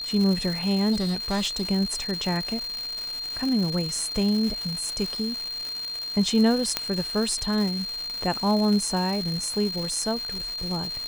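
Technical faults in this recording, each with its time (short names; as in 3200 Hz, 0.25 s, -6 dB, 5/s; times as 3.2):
crackle 390/s -29 dBFS
tone 4200 Hz -30 dBFS
0.92–1.63 clipped -21.5 dBFS
6.77 pop -6 dBFS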